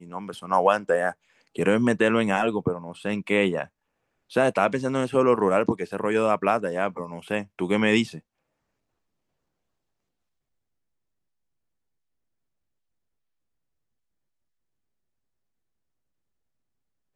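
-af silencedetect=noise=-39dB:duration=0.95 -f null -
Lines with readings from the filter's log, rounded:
silence_start: 8.19
silence_end: 17.16 | silence_duration: 8.96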